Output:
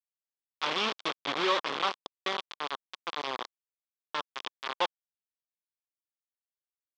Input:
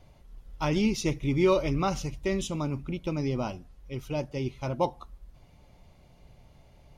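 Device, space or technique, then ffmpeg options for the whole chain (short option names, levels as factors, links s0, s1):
hand-held game console: -af "acrusher=bits=3:mix=0:aa=0.000001,highpass=480,equalizer=f=630:t=q:w=4:g=-4,equalizer=f=1100:t=q:w=4:g=7,equalizer=f=3400:t=q:w=4:g=7,lowpass=f=4800:w=0.5412,lowpass=f=4800:w=1.3066,volume=0.668"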